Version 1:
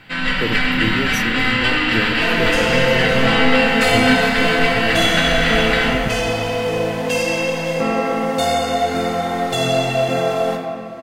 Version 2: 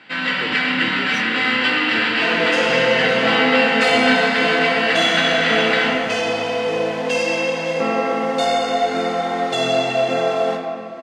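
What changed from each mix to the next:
speech -7.0 dB; master: add BPF 230–6200 Hz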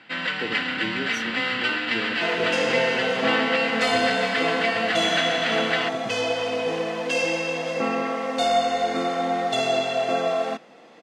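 reverb: off

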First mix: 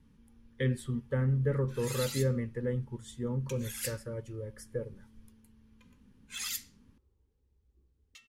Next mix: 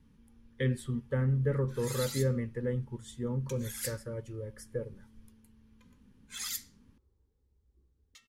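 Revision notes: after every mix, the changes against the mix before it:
background: add bell 2700 Hz -8.5 dB 0.34 oct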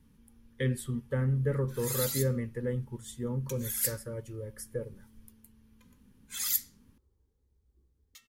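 master: remove air absorption 50 m

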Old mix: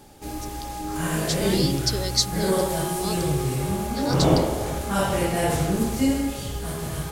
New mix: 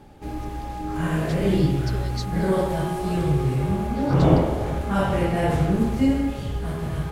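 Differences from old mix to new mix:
speech -7.0 dB; master: add tone controls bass +4 dB, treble -14 dB

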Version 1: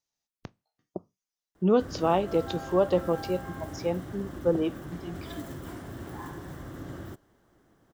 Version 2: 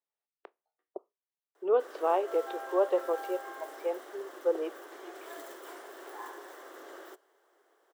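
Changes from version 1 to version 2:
speech: add air absorption 500 m; master: add elliptic high-pass 390 Hz, stop band 60 dB

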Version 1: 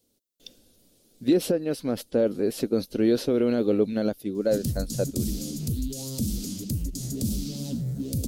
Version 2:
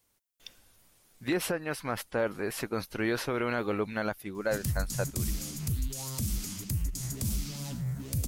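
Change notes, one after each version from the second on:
master: add ten-band EQ 250 Hz -11 dB, 500 Hz -9 dB, 1000 Hz +11 dB, 2000 Hz +9 dB, 4000 Hz -6 dB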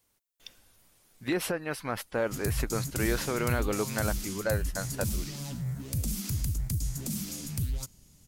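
background: entry -2.20 s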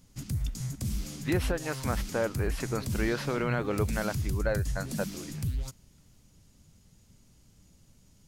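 background: entry -2.15 s; master: add high shelf 6700 Hz -10.5 dB

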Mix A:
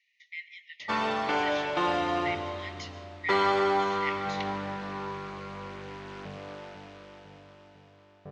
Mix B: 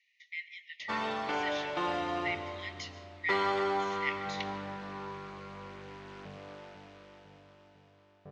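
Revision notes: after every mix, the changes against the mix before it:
background -5.5 dB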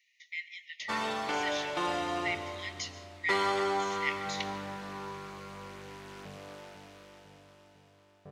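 master: remove air absorption 130 m

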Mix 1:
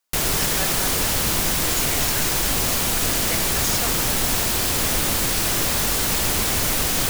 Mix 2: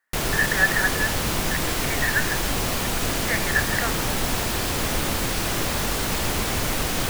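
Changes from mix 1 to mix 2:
speech: add synth low-pass 1800 Hz, resonance Q 12; master: add high shelf 4200 Hz -8.5 dB

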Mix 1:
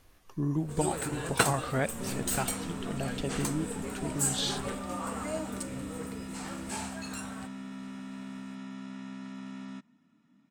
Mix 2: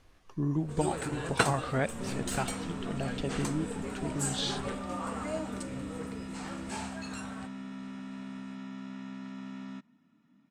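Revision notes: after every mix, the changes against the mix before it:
master: add air absorption 54 m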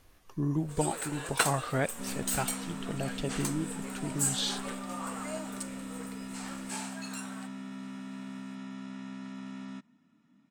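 first sound: add HPF 790 Hz 6 dB/oct; master: remove air absorption 54 m

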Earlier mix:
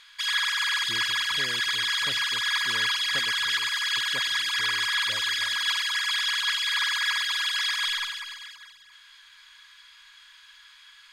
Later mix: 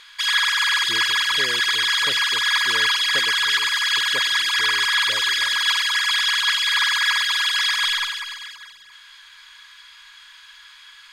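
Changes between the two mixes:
background +6.0 dB; master: add bell 440 Hz +10.5 dB 1.1 oct

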